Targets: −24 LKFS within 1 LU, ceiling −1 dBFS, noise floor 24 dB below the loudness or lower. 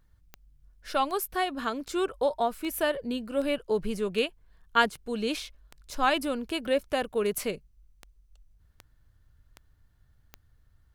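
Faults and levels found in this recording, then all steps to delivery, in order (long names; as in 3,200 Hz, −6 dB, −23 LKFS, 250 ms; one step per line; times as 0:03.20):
number of clicks 14; integrated loudness −29.5 LKFS; sample peak −8.0 dBFS; target loudness −24.0 LKFS
→ click removal
level +5.5 dB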